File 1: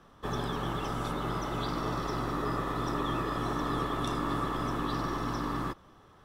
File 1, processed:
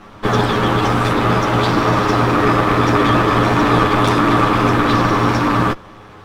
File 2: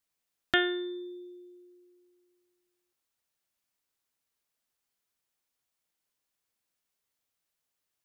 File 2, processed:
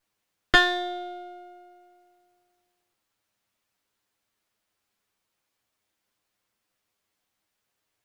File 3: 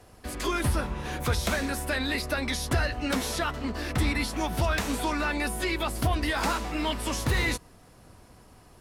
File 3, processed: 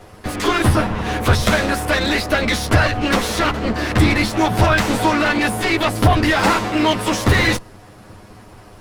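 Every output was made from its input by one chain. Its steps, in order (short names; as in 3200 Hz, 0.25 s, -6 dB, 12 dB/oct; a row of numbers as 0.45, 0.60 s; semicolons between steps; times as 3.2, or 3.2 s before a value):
minimum comb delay 9.6 ms; high shelf 5100 Hz -9 dB; normalise peaks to -1.5 dBFS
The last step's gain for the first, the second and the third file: +20.0, +10.5, +14.0 dB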